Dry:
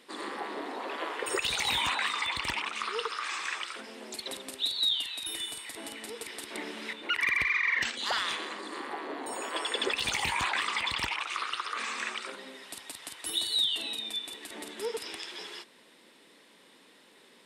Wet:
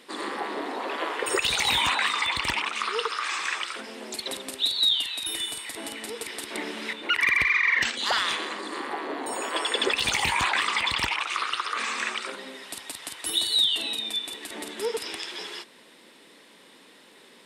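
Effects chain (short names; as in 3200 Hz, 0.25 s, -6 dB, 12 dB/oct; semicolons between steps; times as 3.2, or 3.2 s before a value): 2.65–3.39 HPF 160 Hz 6 dB/oct; gain +5.5 dB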